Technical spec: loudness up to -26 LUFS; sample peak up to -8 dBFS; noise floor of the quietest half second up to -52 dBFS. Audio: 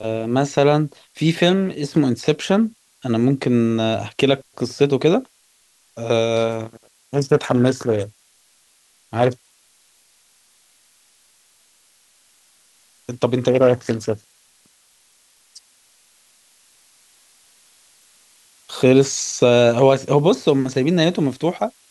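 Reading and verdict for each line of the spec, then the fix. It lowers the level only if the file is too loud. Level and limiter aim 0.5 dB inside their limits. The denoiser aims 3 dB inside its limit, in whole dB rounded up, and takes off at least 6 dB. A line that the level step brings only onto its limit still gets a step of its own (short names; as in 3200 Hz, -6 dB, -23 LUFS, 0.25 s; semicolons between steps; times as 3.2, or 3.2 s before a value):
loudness -18.5 LUFS: fail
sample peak -3.0 dBFS: fail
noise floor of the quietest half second -59 dBFS: OK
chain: gain -8 dB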